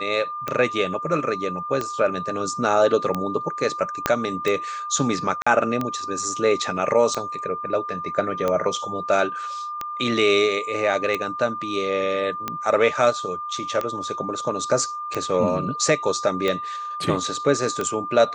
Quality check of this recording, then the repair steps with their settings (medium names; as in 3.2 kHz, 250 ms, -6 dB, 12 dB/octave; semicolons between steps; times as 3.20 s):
tick 45 rpm -11 dBFS
whine 1.2 kHz -28 dBFS
4.06 s: pop -4 dBFS
5.42–5.46 s: dropout 45 ms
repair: de-click; band-stop 1.2 kHz, Q 30; interpolate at 5.42 s, 45 ms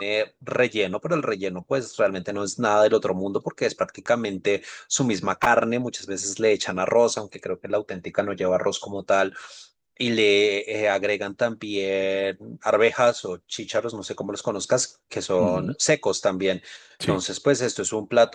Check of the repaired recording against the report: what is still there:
4.06 s: pop